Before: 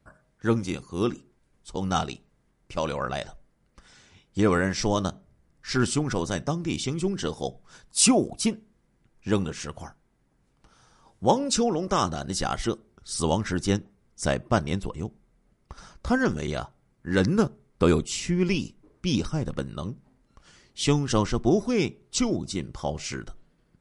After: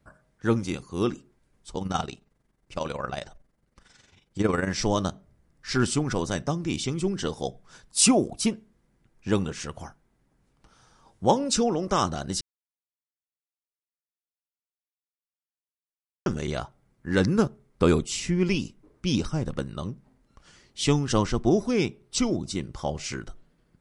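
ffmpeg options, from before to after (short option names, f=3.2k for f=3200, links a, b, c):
-filter_complex "[0:a]asplit=3[a][b][c];[a]afade=t=out:st=1.78:d=0.02[d];[b]tremolo=f=22:d=0.667,afade=t=in:st=1.78:d=0.02,afade=t=out:st=4.68:d=0.02[e];[c]afade=t=in:st=4.68:d=0.02[f];[d][e][f]amix=inputs=3:normalize=0,asettb=1/sr,asplit=3[g][h][i];[g]atrim=end=21.714[j];[h]atrim=start=21.71:end=22.18,asetpts=PTS-STARTPTS,afade=t=in:d=0.004:c=qsin,afade=t=out:st=0.466:d=0.004:c=qsin,bandreject=f=6.8k:w=12[k];[i]atrim=start=22.176[l];[j][k]acrossfade=d=0.004:c1=hsin:c2=qsin[m];[m][l]acrossfade=d=0.004:c1=qsin:c2=hsin,asplit=3[n][o][p];[n]atrim=end=12.41,asetpts=PTS-STARTPTS,afade=t=out:st=12.406:d=0.004:c=hsin[q];[o]atrim=start=12.41:end=16.26,asetpts=PTS-STARTPTS,volume=0[r];[p]atrim=start=16.26,asetpts=PTS-STARTPTS,afade=t=in:d=0.004:c=hsin[s];[q][r][s]concat=n=3:v=0:a=1"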